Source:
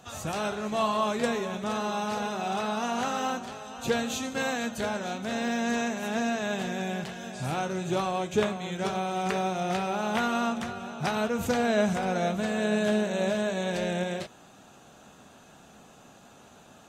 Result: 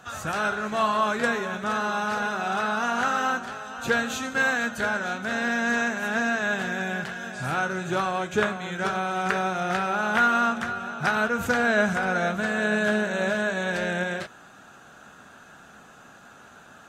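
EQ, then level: peaking EQ 1.5 kHz +13 dB 0.7 oct; 0.0 dB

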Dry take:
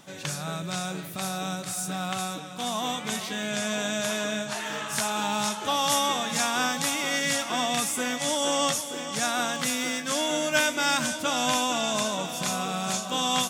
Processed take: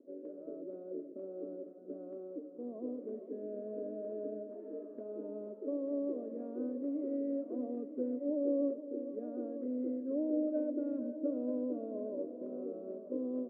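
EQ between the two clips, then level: Chebyshev band-pass 260–610 Hz, order 3; static phaser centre 330 Hz, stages 4; +1.0 dB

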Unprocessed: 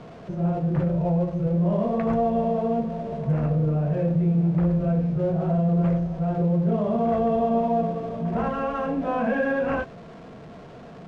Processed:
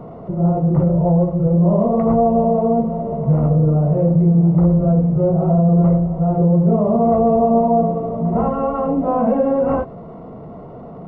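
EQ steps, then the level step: Savitzky-Golay filter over 65 samples; +8.0 dB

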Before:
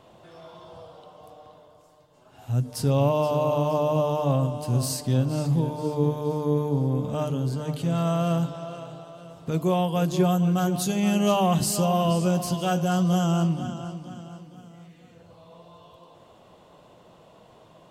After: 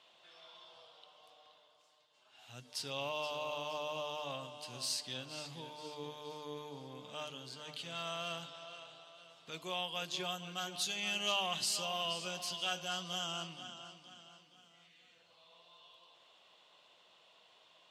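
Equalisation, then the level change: band-pass filter 3.4 kHz, Q 1.5; +1.0 dB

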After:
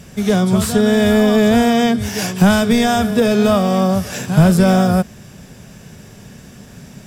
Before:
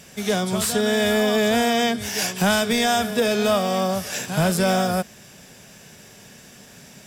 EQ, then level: bass shelf 120 Hz +5.5 dB; bass shelf 410 Hz +11.5 dB; peaking EQ 1.2 kHz +3.5 dB 0.77 oct; 0.0 dB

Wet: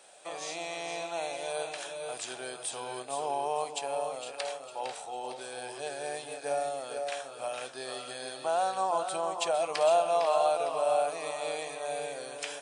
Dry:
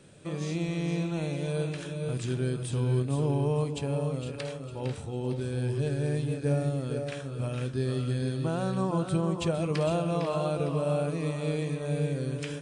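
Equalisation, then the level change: resonant high-pass 730 Hz, resonance Q 4.9; treble shelf 3 kHz +9.5 dB; -2.5 dB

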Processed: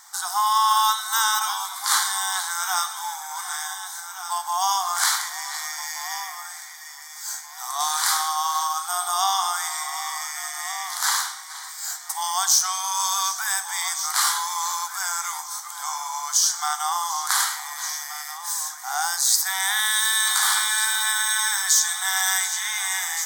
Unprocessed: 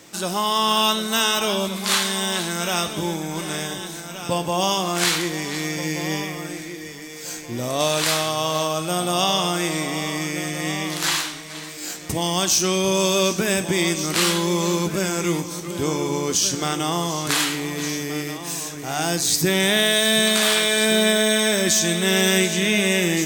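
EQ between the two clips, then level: brick-wall FIR high-pass 710 Hz; static phaser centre 1.1 kHz, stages 4; +3.5 dB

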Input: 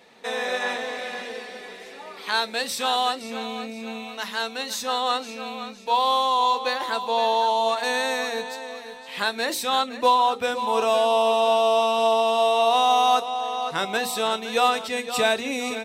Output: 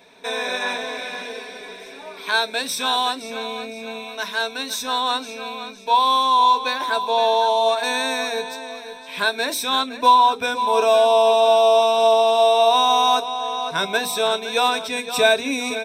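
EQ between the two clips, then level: rippled EQ curve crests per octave 1.6, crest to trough 10 dB; +1.5 dB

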